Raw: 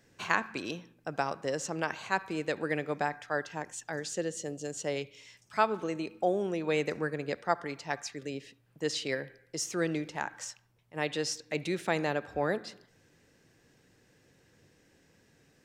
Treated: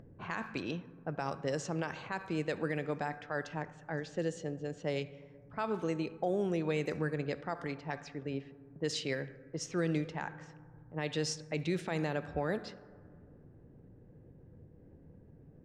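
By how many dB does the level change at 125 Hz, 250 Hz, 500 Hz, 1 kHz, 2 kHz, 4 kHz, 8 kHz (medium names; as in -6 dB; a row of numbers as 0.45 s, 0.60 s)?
+3.0 dB, -0.5 dB, -3.0 dB, -7.0 dB, -6.0 dB, -4.5 dB, -7.5 dB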